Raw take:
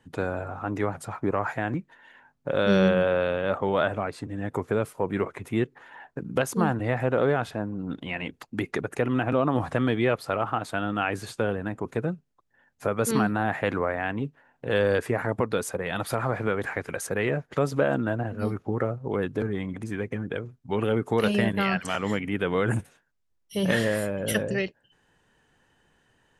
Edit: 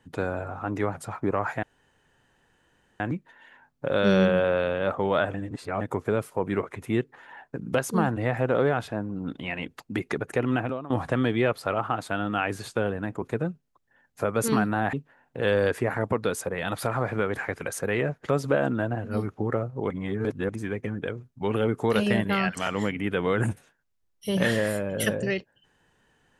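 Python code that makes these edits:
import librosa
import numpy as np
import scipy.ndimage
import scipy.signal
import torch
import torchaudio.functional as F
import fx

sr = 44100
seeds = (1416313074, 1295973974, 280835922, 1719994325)

y = fx.edit(x, sr, fx.insert_room_tone(at_s=1.63, length_s=1.37),
    fx.reverse_span(start_s=3.97, length_s=0.47),
    fx.fade_out_to(start_s=9.23, length_s=0.3, curve='qua', floor_db=-16.5),
    fx.cut(start_s=13.56, length_s=0.65),
    fx.reverse_span(start_s=19.18, length_s=0.59), tone=tone)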